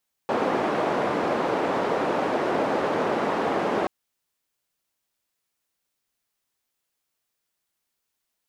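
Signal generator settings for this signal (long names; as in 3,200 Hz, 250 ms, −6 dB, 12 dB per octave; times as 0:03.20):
band-limited noise 280–690 Hz, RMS −24.5 dBFS 3.58 s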